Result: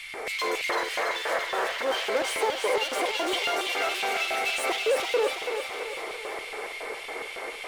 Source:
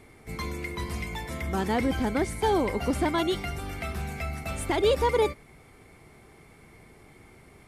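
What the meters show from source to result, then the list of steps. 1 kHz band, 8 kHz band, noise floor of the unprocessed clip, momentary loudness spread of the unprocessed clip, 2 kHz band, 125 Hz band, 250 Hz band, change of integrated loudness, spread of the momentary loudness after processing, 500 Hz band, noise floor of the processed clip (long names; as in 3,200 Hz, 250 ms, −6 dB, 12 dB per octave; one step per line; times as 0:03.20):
+2.0 dB, +5.5 dB, −54 dBFS, 11 LU, +8.0 dB, below −25 dB, −10.5 dB, +0.5 dB, 9 LU, +0.5 dB, −38 dBFS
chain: high-pass filter 240 Hz 12 dB per octave
mid-hump overdrive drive 33 dB, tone 3,500 Hz, clips at −13 dBFS
sound drawn into the spectrogram noise, 0:00.69–0:01.83, 450–2,000 Hz −20 dBFS
downward compressor, threshold −22 dBFS, peak gain reduction 8.5 dB
auto-filter high-pass square 3.6 Hz 480–2,900 Hz
background noise brown −60 dBFS
feedback echo with a high-pass in the loop 333 ms, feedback 60%, high-pass 320 Hz, level −5.5 dB
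level −5.5 dB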